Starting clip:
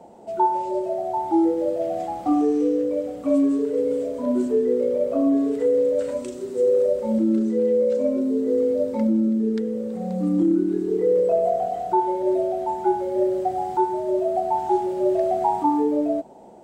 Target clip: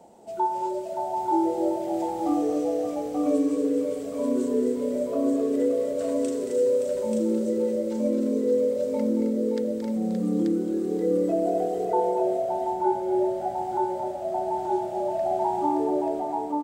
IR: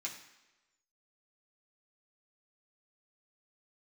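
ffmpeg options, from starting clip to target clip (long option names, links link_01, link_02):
-af "asetnsamples=nb_out_samples=441:pad=0,asendcmd='11.85 highshelf g 2.5',highshelf=frequency=3600:gain=10,aecho=1:1:225|265|572|884:0.376|0.422|0.422|0.668,volume=-6dB"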